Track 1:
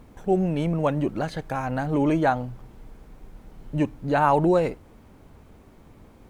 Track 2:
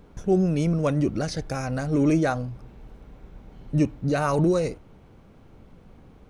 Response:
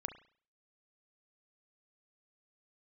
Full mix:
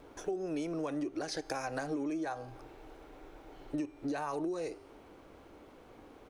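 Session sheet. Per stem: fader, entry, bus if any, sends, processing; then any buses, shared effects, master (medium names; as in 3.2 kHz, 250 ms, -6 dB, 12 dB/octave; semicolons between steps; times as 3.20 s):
-12.5 dB, 0.00 s, no send, none
+2.0 dB, 1.4 ms, no send, Chebyshev high-pass 290 Hz, order 4; de-hum 397.6 Hz, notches 38; peak limiter -19 dBFS, peak gain reduction 7 dB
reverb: none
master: compression 10:1, threshold -33 dBFS, peak gain reduction 15 dB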